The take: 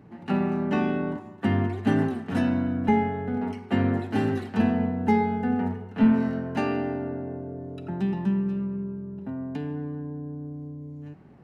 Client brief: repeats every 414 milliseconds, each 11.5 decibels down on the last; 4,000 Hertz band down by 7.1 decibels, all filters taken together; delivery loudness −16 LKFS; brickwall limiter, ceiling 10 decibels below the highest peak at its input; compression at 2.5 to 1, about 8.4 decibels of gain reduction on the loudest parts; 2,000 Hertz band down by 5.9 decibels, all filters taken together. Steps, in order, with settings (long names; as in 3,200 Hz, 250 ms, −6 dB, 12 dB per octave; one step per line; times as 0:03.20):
parametric band 2,000 Hz −6 dB
parametric band 4,000 Hz −7.5 dB
downward compressor 2.5 to 1, threshold −29 dBFS
brickwall limiter −27 dBFS
repeating echo 414 ms, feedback 27%, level −11.5 dB
level +19 dB